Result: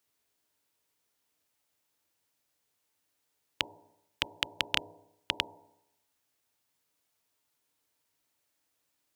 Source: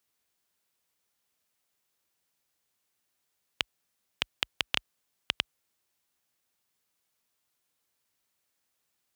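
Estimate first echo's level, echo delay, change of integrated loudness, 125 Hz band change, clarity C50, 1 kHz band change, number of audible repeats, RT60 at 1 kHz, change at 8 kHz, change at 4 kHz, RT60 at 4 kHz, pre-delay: none, none, 0.0 dB, +1.5 dB, 14.0 dB, +1.0 dB, none, 0.85 s, 0.0 dB, 0.0 dB, 0.80 s, 3 ms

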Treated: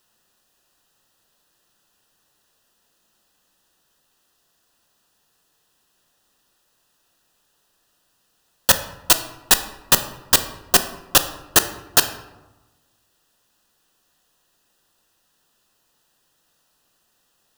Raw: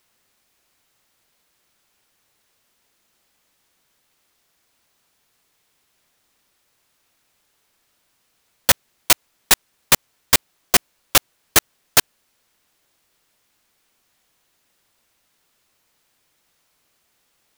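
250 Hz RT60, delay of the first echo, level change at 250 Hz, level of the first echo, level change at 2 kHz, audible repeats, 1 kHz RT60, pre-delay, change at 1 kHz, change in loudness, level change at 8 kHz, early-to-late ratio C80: 1.4 s, none, +1.0 dB, none, -1.5 dB, none, 1.1 s, 3 ms, +0.5 dB, 0.0 dB, 0.0 dB, 14.0 dB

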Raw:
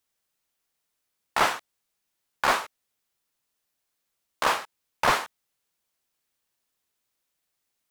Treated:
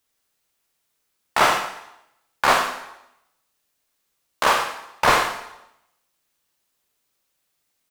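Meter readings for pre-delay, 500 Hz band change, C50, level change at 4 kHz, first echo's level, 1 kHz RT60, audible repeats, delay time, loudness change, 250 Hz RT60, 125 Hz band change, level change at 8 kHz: 13 ms, +6.5 dB, 6.0 dB, +6.0 dB, -11.0 dB, 0.85 s, 1, 90 ms, +5.5 dB, 0.80 s, +6.0 dB, +6.0 dB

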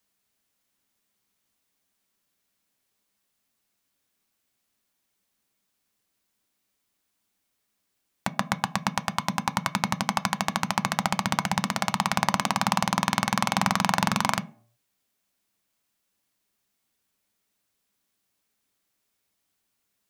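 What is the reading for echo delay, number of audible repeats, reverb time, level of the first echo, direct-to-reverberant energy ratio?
none, none, 0.55 s, none, 10.0 dB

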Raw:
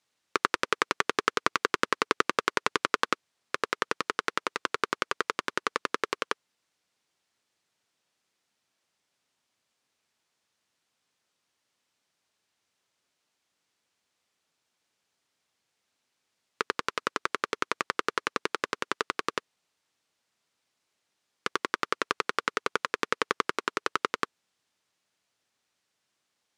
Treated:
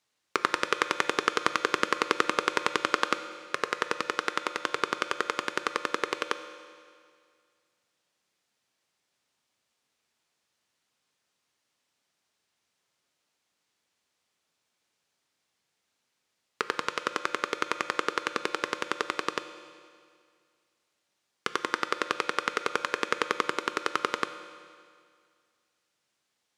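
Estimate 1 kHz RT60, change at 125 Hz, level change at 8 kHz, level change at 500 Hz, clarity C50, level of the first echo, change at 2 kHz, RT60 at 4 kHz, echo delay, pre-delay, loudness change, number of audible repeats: 2.1 s, 0.0 dB, +0.5 dB, +1.0 dB, 10.5 dB, none, +0.5 dB, 2.0 s, none, 6 ms, +0.5 dB, none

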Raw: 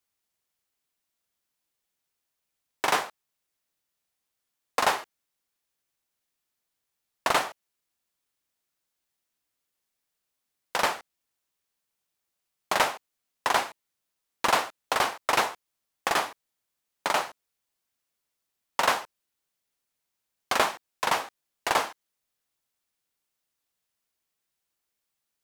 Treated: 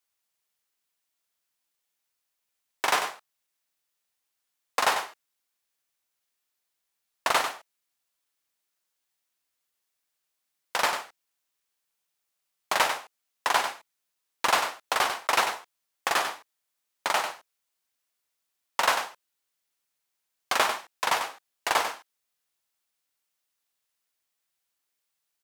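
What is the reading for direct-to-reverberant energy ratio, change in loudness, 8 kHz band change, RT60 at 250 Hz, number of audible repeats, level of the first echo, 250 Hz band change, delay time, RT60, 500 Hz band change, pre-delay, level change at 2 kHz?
none, 0.0 dB, +1.5 dB, none, 1, -8.0 dB, -4.5 dB, 96 ms, none, -1.5 dB, none, +1.0 dB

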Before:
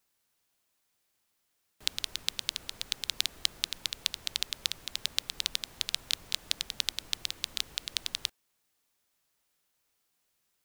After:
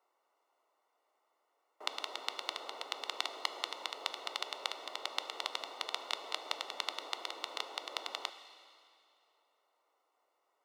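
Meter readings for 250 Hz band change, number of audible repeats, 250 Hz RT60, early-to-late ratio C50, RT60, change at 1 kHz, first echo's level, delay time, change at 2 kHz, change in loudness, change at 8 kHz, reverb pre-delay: -2.0 dB, none, 2.5 s, 11.0 dB, 2.5 s, +10.5 dB, none, none, -2.0 dB, -6.5 dB, -12.5 dB, 4 ms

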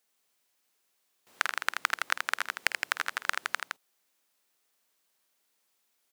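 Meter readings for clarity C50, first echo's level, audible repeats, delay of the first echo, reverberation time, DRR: none, -14.5 dB, 3, 51 ms, none, none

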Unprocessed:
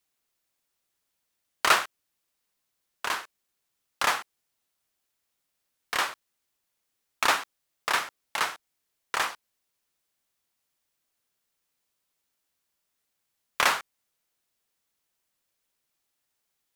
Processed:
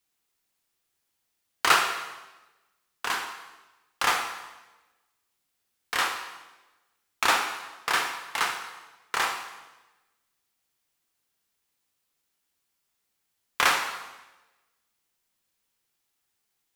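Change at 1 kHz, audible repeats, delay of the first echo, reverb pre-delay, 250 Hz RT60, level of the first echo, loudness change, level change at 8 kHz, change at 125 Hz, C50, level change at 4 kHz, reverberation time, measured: +1.5 dB, none, none, 7 ms, 1.2 s, none, +1.0 dB, +1.5 dB, +2.0 dB, 6.0 dB, +2.0 dB, 1.1 s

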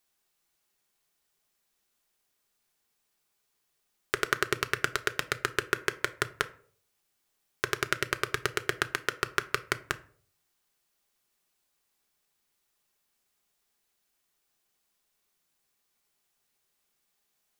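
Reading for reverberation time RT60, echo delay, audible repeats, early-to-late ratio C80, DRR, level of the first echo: 0.55 s, none, none, 22.5 dB, 8.5 dB, none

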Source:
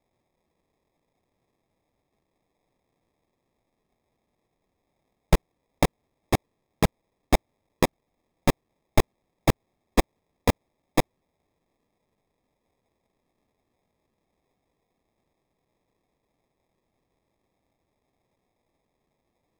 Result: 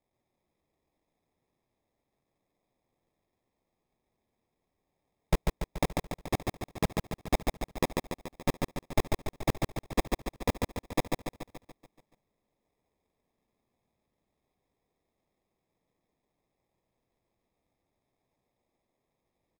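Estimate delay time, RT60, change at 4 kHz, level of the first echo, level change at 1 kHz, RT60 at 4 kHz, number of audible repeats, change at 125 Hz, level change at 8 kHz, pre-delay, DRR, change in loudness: 0.143 s, none, -5.5 dB, -3.5 dB, -5.5 dB, none, 7, -5.5 dB, -5.5 dB, none, none, -6.5 dB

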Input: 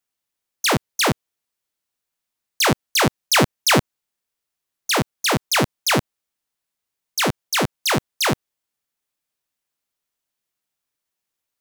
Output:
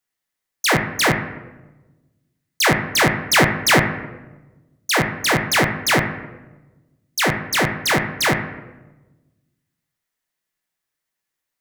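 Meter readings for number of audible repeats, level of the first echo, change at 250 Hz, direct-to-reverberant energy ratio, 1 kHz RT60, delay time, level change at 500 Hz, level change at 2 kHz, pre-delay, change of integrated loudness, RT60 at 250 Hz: none, none, +1.0 dB, -1.0 dB, 0.95 s, none, +1.5 dB, +5.0 dB, 6 ms, +2.0 dB, 1.5 s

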